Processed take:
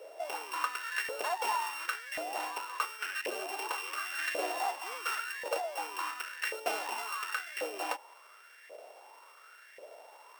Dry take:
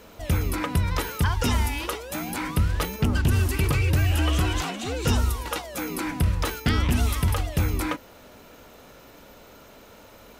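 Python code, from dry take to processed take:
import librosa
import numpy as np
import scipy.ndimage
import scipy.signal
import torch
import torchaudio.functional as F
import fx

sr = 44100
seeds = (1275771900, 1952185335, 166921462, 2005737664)

y = np.r_[np.sort(x[:len(x) // 16 * 16].reshape(-1, 16), axis=1).ravel(), x[len(x) // 16 * 16:]]
y = fx.ladder_highpass(y, sr, hz=320.0, resonance_pct=50)
y = fx.filter_lfo_highpass(y, sr, shape='saw_up', hz=0.92, low_hz=550.0, high_hz=1900.0, q=6.1)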